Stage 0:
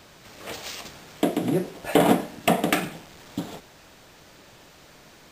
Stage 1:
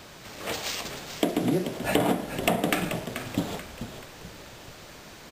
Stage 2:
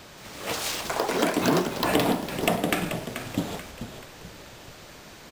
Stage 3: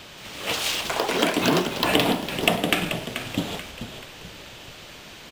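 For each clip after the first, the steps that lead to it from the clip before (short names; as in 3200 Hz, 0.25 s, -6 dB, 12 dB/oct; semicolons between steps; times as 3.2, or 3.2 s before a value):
compressor 6:1, threshold -25 dBFS, peak gain reduction 12 dB; on a send: frequency-shifting echo 0.434 s, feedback 45%, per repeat -56 Hz, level -9.5 dB; on the sum: gain +4 dB
echoes that change speed 0.177 s, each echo +7 st, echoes 3
bell 3000 Hz +8 dB 0.86 oct; gain +1 dB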